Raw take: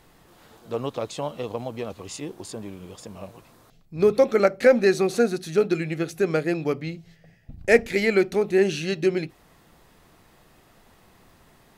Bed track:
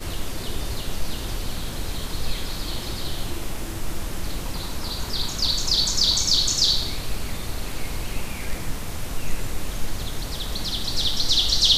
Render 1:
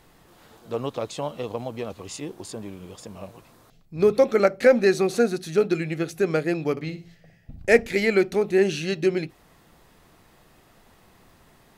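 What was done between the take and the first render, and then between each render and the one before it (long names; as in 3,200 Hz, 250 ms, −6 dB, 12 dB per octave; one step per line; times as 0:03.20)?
0:06.71–0:07.60: flutter between parallel walls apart 10 metres, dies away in 0.32 s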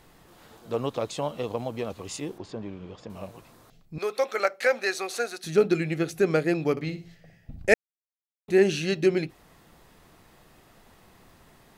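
0:02.38–0:03.10: high-frequency loss of the air 180 metres
0:03.98–0:05.44: high-pass filter 800 Hz
0:07.74–0:08.48: silence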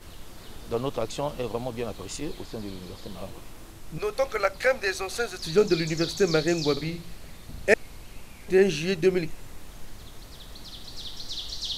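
mix in bed track −15 dB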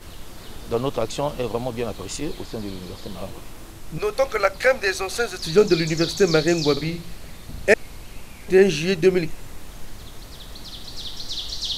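level +5 dB
brickwall limiter −2 dBFS, peak gain reduction 3 dB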